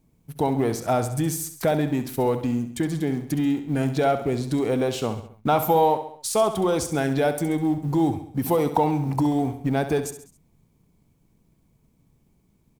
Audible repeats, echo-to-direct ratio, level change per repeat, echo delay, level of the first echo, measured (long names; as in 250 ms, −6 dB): 4, −9.5 dB, −6.0 dB, 67 ms, −11.0 dB